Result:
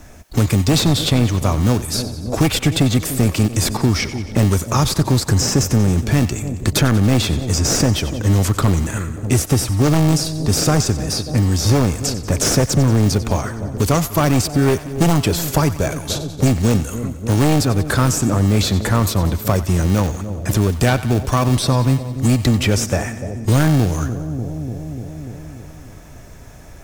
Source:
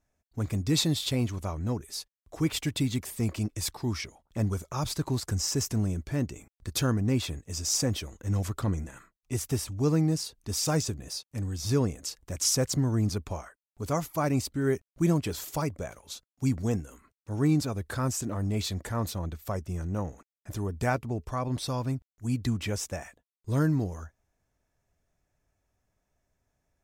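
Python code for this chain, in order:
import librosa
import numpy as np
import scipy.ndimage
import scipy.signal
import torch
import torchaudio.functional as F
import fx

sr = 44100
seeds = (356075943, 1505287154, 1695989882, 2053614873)

p1 = fx.sample_hold(x, sr, seeds[0], rate_hz=1000.0, jitter_pct=0)
p2 = x + (p1 * 10.0 ** (-11.0 / 20.0))
p3 = fx.fold_sine(p2, sr, drive_db=8, ceiling_db=-11.5)
p4 = fx.echo_split(p3, sr, split_hz=700.0, low_ms=295, high_ms=91, feedback_pct=52, wet_db=-15.0)
p5 = fx.band_squash(p4, sr, depth_pct=70)
y = p5 * 10.0 ** (2.0 / 20.0)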